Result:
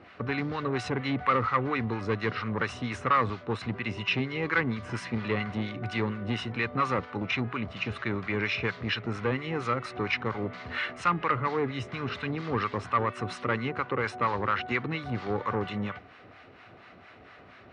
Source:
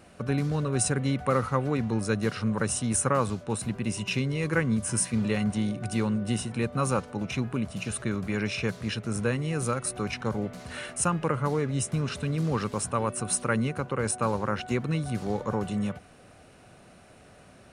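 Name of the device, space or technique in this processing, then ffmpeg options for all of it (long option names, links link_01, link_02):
guitar amplifier with harmonic tremolo: -filter_complex "[0:a]acrossover=split=830[link_01][link_02];[link_01]aeval=exprs='val(0)*(1-0.7/2+0.7/2*cos(2*PI*4.3*n/s))':channel_layout=same[link_03];[link_02]aeval=exprs='val(0)*(1-0.7/2-0.7/2*cos(2*PI*4.3*n/s))':channel_layout=same[link_04];[link_03][link_04]amix=inputs=2:normalize=0,asoftclip=type=tanh:threshold=-24dB,highpass=95,equalizer=frequency=150:width_type=q:width=4:gain=-10,equalizer=frequency=210:width_type=q:width=4:gain=-6,equalizer=frequency=560:width_type=q:width=4:gain=-5,equalizer=frequency=1200:width_type=q:width=4:gain=5,equalizer=frequency=2000:width_type=q:width=4:gain=7,lowpass=frequency=4100:width=0.5412,lowpass=frequency=4100:width=1.3066,volume=6dB"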